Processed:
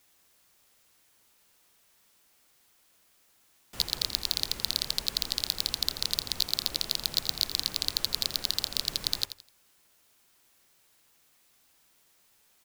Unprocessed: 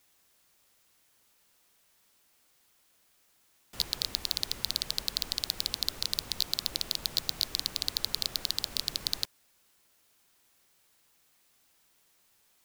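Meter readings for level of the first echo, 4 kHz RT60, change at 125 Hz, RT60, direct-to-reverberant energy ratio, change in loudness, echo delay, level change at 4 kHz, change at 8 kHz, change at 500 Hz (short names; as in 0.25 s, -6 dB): -11.5 dB, none, +2.5 dB, none, none, +2.5 dB, 84 ms, +2.5 dB, +2.5 dB, +2.5 dB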